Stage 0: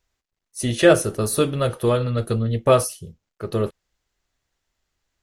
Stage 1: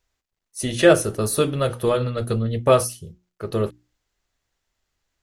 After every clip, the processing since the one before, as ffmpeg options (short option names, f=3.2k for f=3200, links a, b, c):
-af "bandreject=f=60:t=h:w=6,bandreject=f=120:t=h:w=6,bandreject=f=180:t=h:w=6,bandreject=f=240:t=h:w=6,bandreject=f=300:t=h:w=6,bandreject=f=360:t=h:w=6"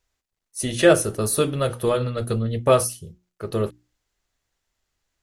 -af "equalizer=f=10k:t=o:w=1:g=3,volume=-1dB"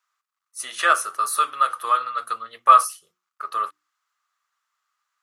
-af "highpass=f=1.2k:t=q:w=8.4,volume=-3dB"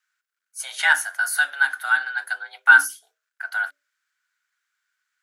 -af "aeval=exprs='0.891*(cos(1*acos(clip(val(0)/0.891,-1,1)))-cos(1*PI/2))+0.0141*(cos(2*acos(clip(val(0)/0.891,-1,1)))-cos(2*PI/2))':c=same,afreqshift=280"